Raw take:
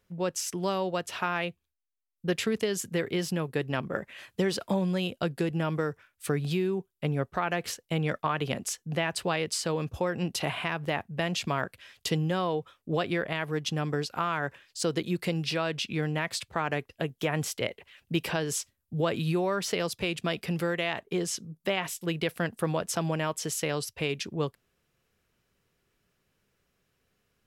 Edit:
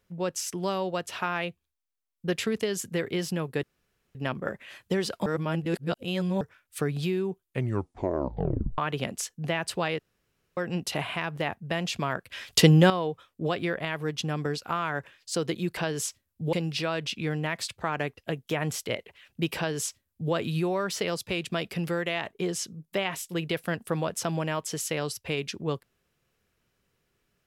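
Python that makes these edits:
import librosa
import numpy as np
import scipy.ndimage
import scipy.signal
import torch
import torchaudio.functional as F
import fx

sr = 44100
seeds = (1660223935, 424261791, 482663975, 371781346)

y = fx.edit(x, sr, fx.insert_room_tone(at_s=3.63, length_s=0.52),
    fx.reverse_span(start_s=4.74, length_s=1.15),
    fx.tape_stop(start_s=6.89, length_s=1.37),
    fx.room_tone_fill(start_s=9.47, length_s=0.58),
    fx.clip_gain(start_s=11.8, length_s=0.58, db=11.0),
    fx.duplicate(start_s=18.29, length_s=0.76, to_s=15.25), tone=tone)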